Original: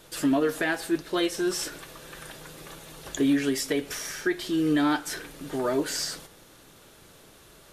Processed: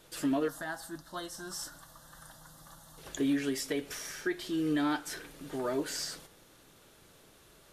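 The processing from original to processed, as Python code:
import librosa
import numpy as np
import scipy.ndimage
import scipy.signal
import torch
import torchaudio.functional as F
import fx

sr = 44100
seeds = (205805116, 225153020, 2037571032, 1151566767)

y = fx.fixed_phaser(x, sr, hz=1000.0, stages=4, at=(0.48, 2.98))
y = y * 10.0 ** (-6.5 / 20.0)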